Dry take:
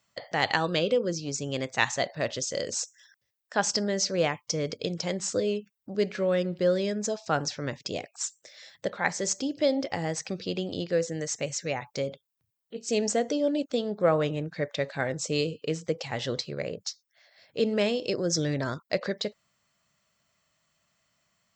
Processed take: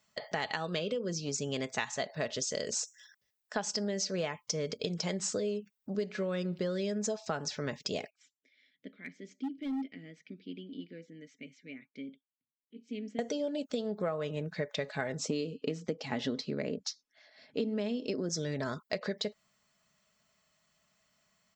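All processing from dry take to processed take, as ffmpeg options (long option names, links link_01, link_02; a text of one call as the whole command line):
ffmpeg -i in.wav -filter_complex "[0:a]asettb=1/sr,asplit=3[link_01][link_02][link_03];[link_01]atrim=end=8.104[link_04];[link_02]atrim=start=8.1:end=13.19,asetpts=PTS-STARTPTS,afade=type=in:duration=0.004:curve=qsin,afade=type=out:start_time=5.086:duration=0.004:curve=qsin,asplit=3[link_05][link_06][link_07];[link_05]bandpass=frequency=270:width_type=q:width=8,volume=0dB[link_08];[link_06]bandpass=frequency=2290:width_type=q:width=8,volume=-6dB[link_09];[link_07]bandpass=frequency=3010:width_type=q:width=8,volume=-9dB[link_10];[link_08][link_09][link_10]amix=inputs=3:normalize=0,highshelf=frequency=3300:gain=-10.5,volume=29.5dB,asoftclip=hard,volume=-29.5dB[link_11];[link_03]atrim=start=13.186[link_12];[link_04][link_11]acrossfade=duration=0.004:curve1=hsin:curve2=qsin[link_13];[link_13][link_12]acrossfade=duration=0.004:curve1=qsin:curve2=hsin,asettb=1/sr,asplit=3[link_14][link_15][link_16];[link_14]atrim=end=15.194[link_17];[link_15]atrim=start=15.19:end=18.29,asetpts=PTS-STARTPTS,afade=type=in:duration=0.004:curve=qsin,afade=type=out:start_time=3.096:duration=0.004:curve=qsin,lowpass=6200,equalizer=frequency=270:width_type=o:width=0.57:gain=14.5[link_18];[link_16]atrim=start=18.286[link_19];[link_17][link_18]acrossfade=duration=0.004:curve1=hsin:curve2=qsin[link_20];[link_20][link_19]acrossfade=duration=0.004:curve1=qsin:curve2=hsin,aecho=1:1:4.7:0.41,acompressor=threshold=-29dB:ratio=10,volume=-1dB" out.wav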